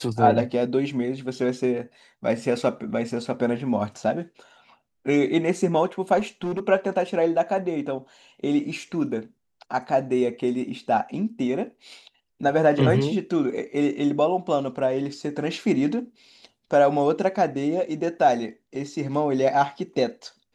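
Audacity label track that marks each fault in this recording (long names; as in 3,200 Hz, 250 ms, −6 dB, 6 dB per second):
6.180000	6.600000	clipping −23 dBFS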